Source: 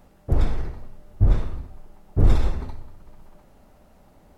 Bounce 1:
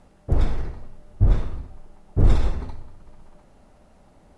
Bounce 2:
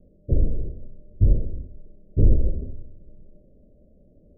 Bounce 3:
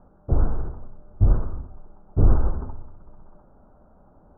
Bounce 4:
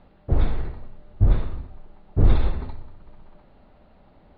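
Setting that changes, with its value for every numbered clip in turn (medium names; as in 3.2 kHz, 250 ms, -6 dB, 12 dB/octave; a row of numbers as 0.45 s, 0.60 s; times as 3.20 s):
steep low-pass, frequency: 11 kHz, 600 Hz, 1.5 kHz, 4.4 kHz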